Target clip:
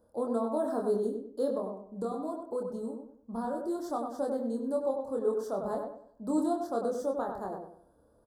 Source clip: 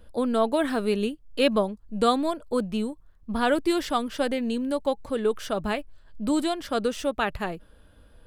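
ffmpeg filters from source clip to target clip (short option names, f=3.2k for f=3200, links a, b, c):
-filter_complex "[0:a]highpass=f=620:p=1,tiltshelf=f=1.2k:g=5.5,alimiter=limit=-16dB:level=0:latency=1:release=357,asettb=1/sr,asplit=3[a][b][c];[a]atrim=end=1.554[d];[b]atrim=start=1.55:end=3.84,asetpts=PTS-STARTPTS,afade=t=in:d=0.004:c=qsin,afade=t=out:st=2.286:d=0.004:c=qsin,acompressor=threshold=-29dB:ratio=2.5[e];[c]atrim=start=3.836[f];[d][e]acrossfade=d=0.004:c1=hsin:c2=qsin[g];[g][f]acrossfade=d=0.004:c1=qsin:c2=hsin,asuperstop=centerf=2500:order=4:qfactor=0.56,asplit=2[h][i];[i]adelay=26,volume=-3.5dB[j];[h][j]amix=inputs=2:normalize=0,asplit=2[k][l];[l]adelay=97,lowpass=f=2.1k:p=1,volume=-4.5dB,asplit=2[m][n];[n]adelay=97,lowpass=f=2.1k:p=1,volume=0.36,asplit=2[o][p];[p]adelay=97,lowpass=f=2.1k:p=1,volume=0.36,asplit=2[q][r];[r]adelay=97,lowpass=f=2.1k:p=1,volume=0.36,asplit=2[s][t];[t]adelay=97,lowpass=f=2.1k:p=1,volume=0.36[u];[k][m][o][q][s][u]amix=inputs=6:normalize=0,volume=-5.5dB"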